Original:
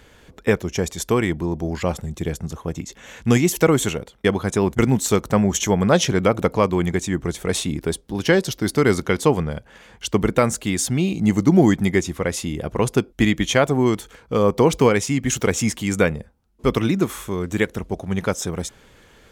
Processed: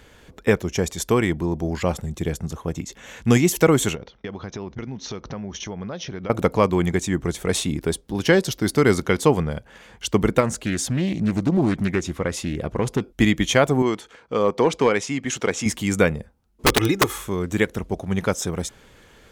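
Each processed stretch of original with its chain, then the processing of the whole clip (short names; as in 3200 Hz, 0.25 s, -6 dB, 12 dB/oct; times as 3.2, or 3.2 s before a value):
3.95–6.3 steep low-pass 6200 Hz 96 dB/oct + compressor 5:1, threshold -30 dBFS
10.4–13.01 high shelf 7300 Hz -6.5 dB + compressor 2:1, threshold -19 dBFS + Doppler distortion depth 0.32 ms
13.82–15.66 HPF 350 Hz 6 dB/oct + overloaded stage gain 8 dB + air absorption 65 m
16.66–17.18 comb 2.4 ms, depth 74% + wrapped overs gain 9 dB
whole clip: dry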